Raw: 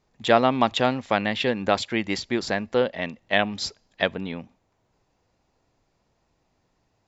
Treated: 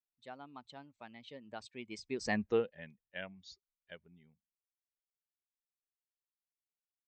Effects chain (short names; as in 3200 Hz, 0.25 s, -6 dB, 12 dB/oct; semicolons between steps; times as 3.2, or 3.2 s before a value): per-bin expansion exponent 1.5; Doppler pass-by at 2.39, 31 m/s, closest 2.3 m